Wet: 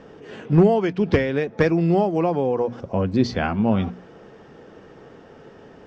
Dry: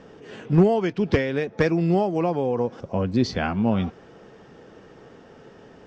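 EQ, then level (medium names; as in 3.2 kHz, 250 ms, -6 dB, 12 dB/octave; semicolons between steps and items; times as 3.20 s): treble shelf 4 kHz -5.5 dB; hum notches 60/120/180/240 Hz; +2.5 dB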